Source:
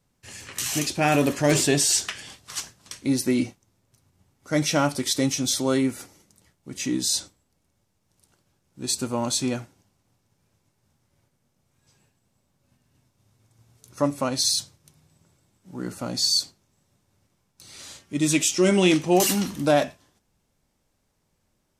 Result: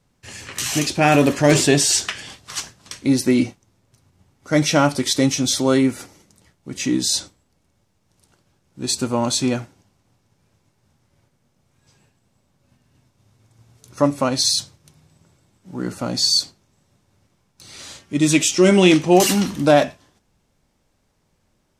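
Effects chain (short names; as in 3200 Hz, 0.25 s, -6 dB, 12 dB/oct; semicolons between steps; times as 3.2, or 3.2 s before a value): high shelf 9800 Hz -9.5 dB; gain +6 dB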